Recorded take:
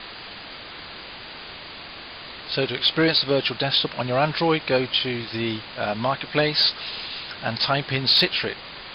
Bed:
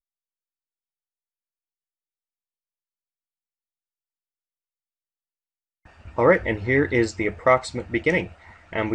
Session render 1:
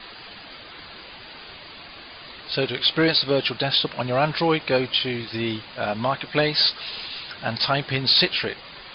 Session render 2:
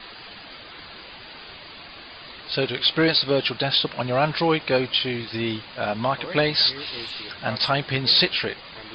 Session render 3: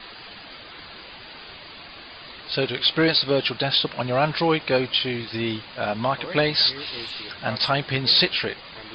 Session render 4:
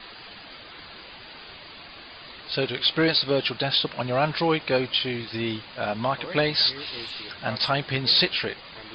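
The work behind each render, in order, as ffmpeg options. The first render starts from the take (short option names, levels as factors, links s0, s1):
-af "afftdn=nr=7:nf=-39"
-filter_complex "[1:a]volume=0.106[s0];[0:a][s0]amix=inputs=2:normalize=0"
-af anull
-af "volume=0.794"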